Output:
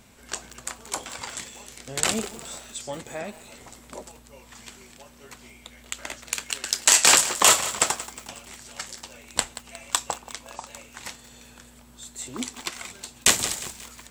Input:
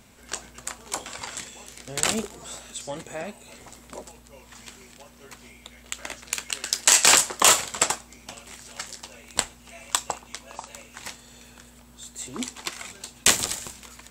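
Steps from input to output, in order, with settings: lo-fi delay 0.18 s, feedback 55%, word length 6-bit, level -14 dB

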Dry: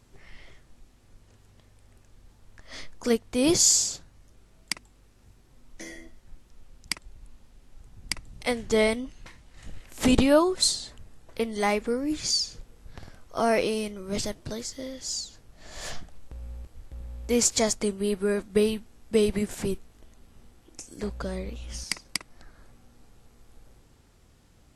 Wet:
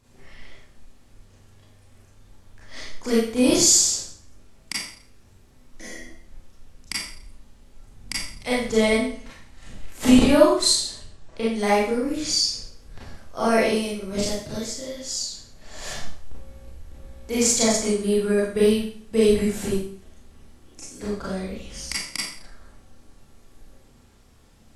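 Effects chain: 10.83–11.49 LPF 4900 Hz -> 10000 Hz 24 dB/oct; Schroeder reverb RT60 0.52 s, combs from 28 ms, DRR -7 dB; gain -3.5 dB

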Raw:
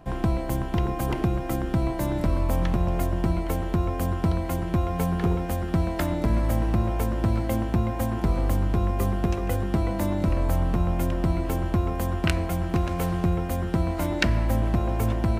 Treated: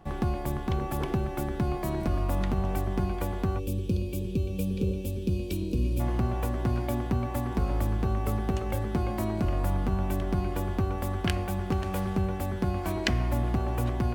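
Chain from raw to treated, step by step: spectral gain 3.91–6.53, 530–2100 Hz -23 dB; speed mistake 44.1 kHz file played as 48 kHz; gain -4 dB

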